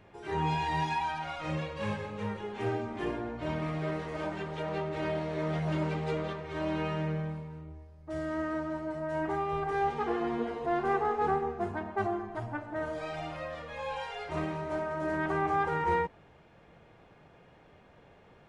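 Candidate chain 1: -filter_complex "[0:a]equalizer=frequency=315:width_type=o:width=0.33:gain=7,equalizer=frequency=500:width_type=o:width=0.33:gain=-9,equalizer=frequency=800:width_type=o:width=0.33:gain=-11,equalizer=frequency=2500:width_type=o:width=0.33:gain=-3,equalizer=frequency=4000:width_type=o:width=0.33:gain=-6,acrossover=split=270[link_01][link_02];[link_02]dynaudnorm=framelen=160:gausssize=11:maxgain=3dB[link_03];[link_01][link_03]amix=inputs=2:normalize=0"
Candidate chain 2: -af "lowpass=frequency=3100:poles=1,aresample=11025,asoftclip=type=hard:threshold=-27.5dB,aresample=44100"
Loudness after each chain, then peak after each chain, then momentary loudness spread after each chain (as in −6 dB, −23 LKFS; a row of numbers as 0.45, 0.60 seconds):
−31.5, −34.5 LKFS; −16.5, −26.0 dBFS; 9, 7 LU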